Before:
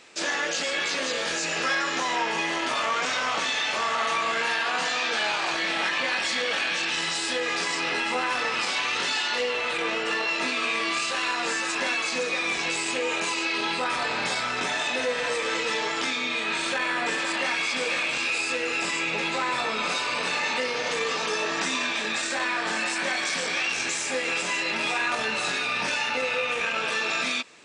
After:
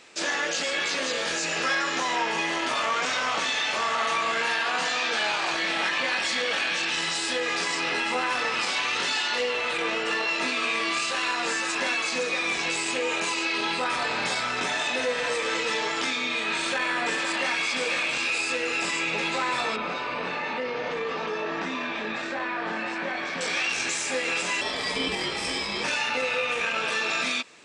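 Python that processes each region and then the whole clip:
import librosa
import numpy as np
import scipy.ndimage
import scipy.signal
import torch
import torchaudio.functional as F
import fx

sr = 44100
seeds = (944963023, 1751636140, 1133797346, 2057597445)

y = fx.chain(x, sr, fx.highpass(hz=53.0, slope=12),
    fx.spacing_loss(db_at_10k=31),
    fx.env_flatten(amount_pct=50), at=(19.76, 23.41))
y = fx.chain(y, sr, fx.ripple_eq(per_octave=1.1, db=13),
    fx.ring_mod(carrier_hz=1400.0), at=(24.61, 25.84))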